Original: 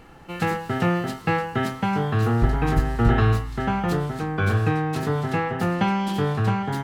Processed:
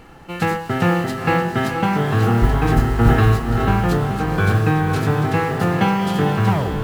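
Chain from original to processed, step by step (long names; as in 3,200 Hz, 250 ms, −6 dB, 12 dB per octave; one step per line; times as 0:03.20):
turntable brake at the end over 0.33 s
noise that follows the level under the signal 32 dB
feedback delay with all-pass diffusion 477 ms, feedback 41%, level −6 dB
level +4 dB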